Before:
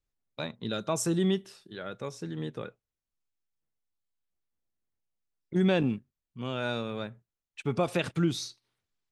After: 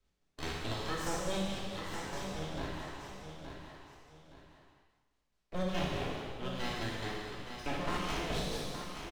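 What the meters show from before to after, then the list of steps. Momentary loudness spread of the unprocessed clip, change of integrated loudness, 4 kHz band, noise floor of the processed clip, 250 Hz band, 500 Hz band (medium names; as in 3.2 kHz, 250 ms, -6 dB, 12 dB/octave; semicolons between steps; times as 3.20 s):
15 LU, -7.0 dB, -1.0 dB, -78 dBFS, -9.0 dB, -7.0 dB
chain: spectral sustain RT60 1.12 s; Bessel low-pass 5 kHz; de-hum 75.38 Hz, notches 3; peak limiter -18.5 dBFS, peak gain reduction 6 dB; full-wave rectifier; square tremolo 4.7 Hz, depth 60%, duty 45%; feedback delay 869 ms, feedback 19%, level -11.5 dB; gated-style reverb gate 480 ms falling, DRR -4 dB; three bands compressed up and down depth 40%; trim -5.5 dB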